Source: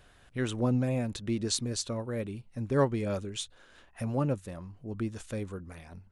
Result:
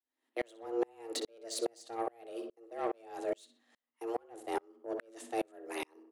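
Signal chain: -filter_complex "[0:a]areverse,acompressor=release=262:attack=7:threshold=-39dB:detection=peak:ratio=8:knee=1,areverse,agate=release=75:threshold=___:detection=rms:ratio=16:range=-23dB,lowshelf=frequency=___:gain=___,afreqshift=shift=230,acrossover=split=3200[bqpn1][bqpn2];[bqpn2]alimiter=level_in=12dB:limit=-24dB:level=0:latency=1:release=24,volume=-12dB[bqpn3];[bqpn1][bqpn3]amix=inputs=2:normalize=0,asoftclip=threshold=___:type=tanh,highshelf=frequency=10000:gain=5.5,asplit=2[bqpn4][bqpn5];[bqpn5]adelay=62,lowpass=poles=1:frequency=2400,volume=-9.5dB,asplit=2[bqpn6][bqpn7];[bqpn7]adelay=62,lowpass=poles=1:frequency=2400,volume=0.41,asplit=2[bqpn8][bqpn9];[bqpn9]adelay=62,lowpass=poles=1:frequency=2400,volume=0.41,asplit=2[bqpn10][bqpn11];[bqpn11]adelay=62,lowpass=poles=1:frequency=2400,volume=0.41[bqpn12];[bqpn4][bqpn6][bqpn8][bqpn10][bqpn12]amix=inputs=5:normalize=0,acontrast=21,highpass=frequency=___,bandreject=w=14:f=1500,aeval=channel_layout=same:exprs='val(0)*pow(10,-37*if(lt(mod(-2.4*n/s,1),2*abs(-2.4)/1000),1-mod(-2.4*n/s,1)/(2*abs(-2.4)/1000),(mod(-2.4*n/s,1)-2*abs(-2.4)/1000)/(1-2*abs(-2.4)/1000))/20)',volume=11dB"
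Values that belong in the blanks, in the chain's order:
-50dB, 83, -8, -36dB, 57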